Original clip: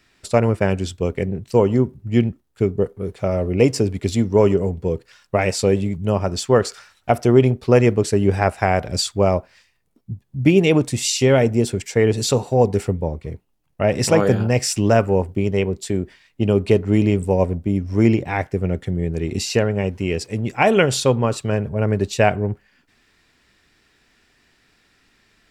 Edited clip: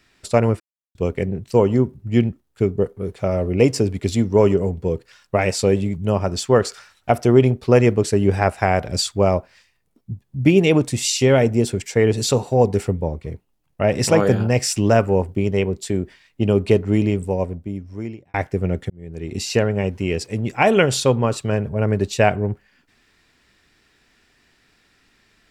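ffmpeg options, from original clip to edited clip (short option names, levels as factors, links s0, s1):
-filter_complex "[0:a]asplit=5[s0][s1][s2][s3][s4];[s0]atrim=end=0.6,asetpts=PTS-STARTPTS,afade=t=out:st=0.596:d=0.004:c=hsin[s5];[s1]atrim=start=0.6:end=0.95,asetpts=PTS-STARTPTS,volume=0[s6];[s2]atrim=start=0.95:end=18.34,asetpts=PTS-STARTPTS,afade=t=in:d=0.004:c=hsin,afade=t=out:st=15.79:d=1.6[s7];[s3]atrim=start=18.34:end=18.9,asetpts=PTS-STARTPTS,afade=t=in:d=0.004:c=hsin,afade=t=out:st=0.556:d=0.004:c=hsin[s8];[s4]atrim=start=18.9,asetpts=PTS-STARTPTS,afade=t=in:d=0.67[s9];[s5][s6][s7][s8][s9]concat=n=5:v=0:a=1"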